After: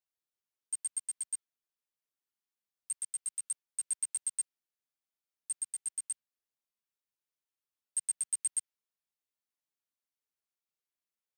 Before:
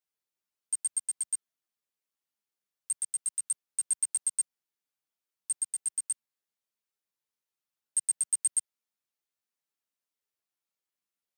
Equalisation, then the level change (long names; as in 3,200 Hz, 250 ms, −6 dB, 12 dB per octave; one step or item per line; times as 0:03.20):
dynamic equaliser 2,600 Hz, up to +4 dB, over −45 dBFS, Q 0.77
−5.5 dB